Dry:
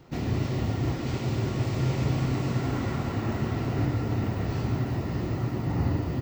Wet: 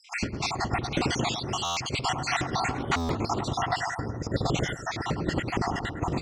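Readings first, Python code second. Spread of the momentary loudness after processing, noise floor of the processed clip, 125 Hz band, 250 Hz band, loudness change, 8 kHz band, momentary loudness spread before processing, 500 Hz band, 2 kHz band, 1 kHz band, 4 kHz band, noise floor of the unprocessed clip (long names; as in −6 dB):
4 LU, −38 dBFS, −6.5 dB, −2.5 dB, −0.5 dB, +11.5 dB, 3 LU, +1.0 dB, +8.5 dB, +8.5 dB, +10.5 dB, −32 dBFS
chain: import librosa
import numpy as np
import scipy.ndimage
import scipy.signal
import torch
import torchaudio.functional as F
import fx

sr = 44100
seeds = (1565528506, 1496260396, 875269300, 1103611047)

p1 = fx.spec_dropout(x, sr, seeds[0], share_pct=59)
p2 = fx.dynamic_eq(p1, sr, hz=450.0, q=0.82, threshold_db=-42.0, ratio=4.0, max_db=4)
p3 = fx.over_compress(p2, sr, threshold_db=-33.0, ratio=-0.5)
p4 = scipy.signal.sosfilt(scipy.signal.butter(8, 10000.0, 'lowpass', fs=sr, output='sos'), p3)
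p5 = fx.tilt_shelf(p4, sr, db=-3.5, hz=1500.0)
p6 = fx.spec_box(p5, sr, start_s=3.8, length_s=0.56, low_hz=2000.0, high_hz=4500.0, gain_db=-24)
p7 = p6 + fx.echo_bbd(p6, sr, ms=104, stages=1024, feedback_pct=46, wet_db=-7, dry=0)
p8 = fx.buffer_glitch(p7, sr, at_s=(1.64, 2.97), block=512, repeats=10)
p9 = fx.record_warp(p8, sr, rpm=33.33, depth_cents=100.0)
y = p9 * 10.0 ** (8.5 / 20.0)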